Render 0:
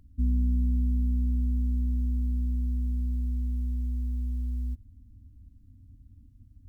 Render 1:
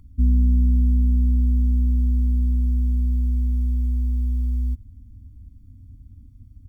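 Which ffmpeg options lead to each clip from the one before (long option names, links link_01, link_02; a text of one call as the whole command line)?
ffmpeg -i in.wav -af "aecho=1:1:0.9:0.76,volume=3.5dB" out.wav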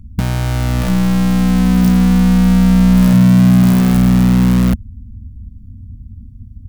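ffmpeg -i in.wav -af "aeval=exprs='(mod(8.41*val(0)+1,2)-1)/8.41':channel_layout=same,lowshelf=frequency=280:width_type=q:width=3:gain=9,volume=1.5dB" out.wav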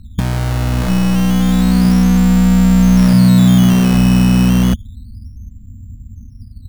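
ffmpeg -i in.wav -af "acrusher=samples=11:mix=1:aa=0.000001:lfo=1:lforange=11:lforate=0.3" out.wav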